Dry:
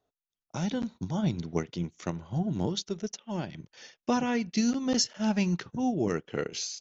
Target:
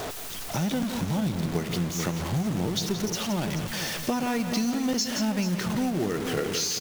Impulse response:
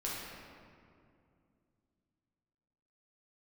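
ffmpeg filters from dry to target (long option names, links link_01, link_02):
-filter_complex "[0:a]aeval=exprs='val(0)+0.5*0.0282*sgn(val(0))':channel_layout=same,asplit=2[link_01][link_02];[link_02]aecho=0:1:434:0.251[link_03];[link_01][link_03]amix=inputs=2:normalize=0,acrusher=bits=4:mode=log:mix=0:aa=0.000001,asplit=2[link_04][link_05];[link_05]aecho=0:1:171:0.282[link_06];[link_04][link_06]amix=inputs=2:normalize=0,acompressor=threshold=-27dB:ratio=6,volume=3.5dB"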